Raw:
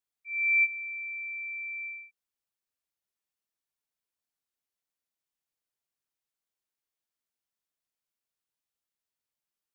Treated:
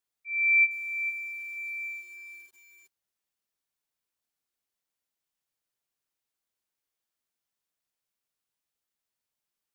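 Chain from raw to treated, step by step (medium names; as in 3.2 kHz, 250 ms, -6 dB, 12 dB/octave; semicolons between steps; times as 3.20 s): bit-crushed delay 454 ms, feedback 35%, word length 9-bit, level -8.5 dB; trim +2.5 dB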